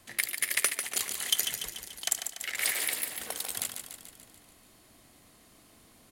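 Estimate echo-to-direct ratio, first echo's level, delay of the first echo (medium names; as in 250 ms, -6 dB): -5.5 dB, -7.5 dB, 145 ms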